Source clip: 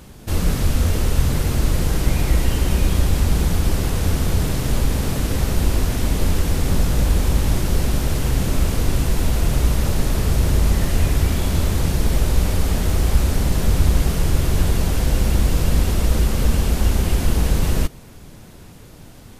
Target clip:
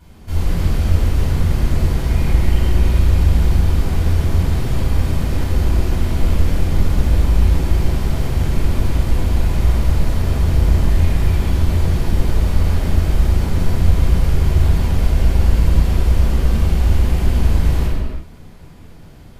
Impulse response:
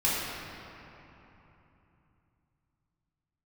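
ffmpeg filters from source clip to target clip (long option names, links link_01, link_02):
-filter_complex "[0:a]equalizer=frequency=10000:width_type=o:width=1.9:gain=-5[link_01];[1:a]atrim=start_sample=2205,afade=type=out:start_time=0.38:duration=0.01,atrim=end_sample=17199,asetrate=39690,aresample=44100[link_02];[link_01][link_02]afir=irnorm=-1:irlink=0,volume=-12.5dB"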